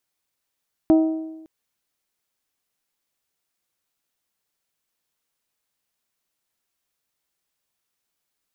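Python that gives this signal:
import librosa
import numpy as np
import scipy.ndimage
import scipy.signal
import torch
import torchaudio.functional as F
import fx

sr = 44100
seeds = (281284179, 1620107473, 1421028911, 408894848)

y = fx.strike_metal(sr, length_s=0.56, level_db=-10, body='bell', hz=319.0, decay_s=1.04, tilt_db=9.5, modes=5)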